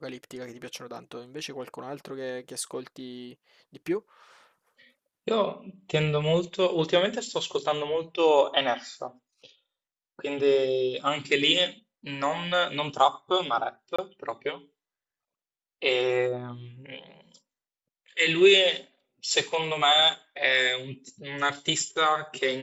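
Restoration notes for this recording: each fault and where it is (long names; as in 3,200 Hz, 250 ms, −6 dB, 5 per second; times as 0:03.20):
0:13.96–0:13.98: drop-out 25 ms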